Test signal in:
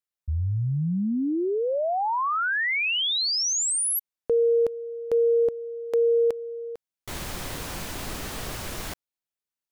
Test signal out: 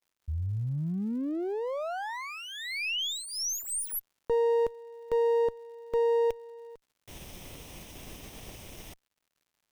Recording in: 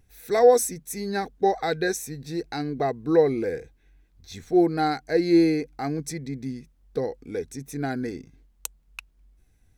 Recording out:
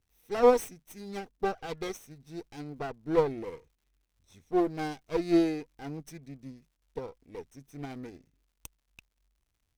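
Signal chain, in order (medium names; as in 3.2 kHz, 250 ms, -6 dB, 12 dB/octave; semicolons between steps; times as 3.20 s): comb filter that takes the minimum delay 0.35 ms; crackle 150 per s -46 dBFS; upward expansion 1.5:1, over -40 dBFS; trim -3.5 dB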